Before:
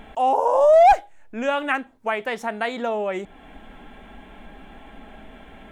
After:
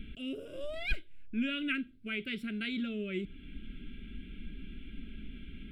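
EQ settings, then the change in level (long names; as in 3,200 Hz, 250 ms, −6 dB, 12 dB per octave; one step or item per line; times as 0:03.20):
elliptic band-stop filter 460–1,700 Hz, stop band 60 dB
low-pass filter 2,300 Hz 6 dB per octave
phaser with its sweep stopped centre 1,800 Hz, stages 6
+2.5 dB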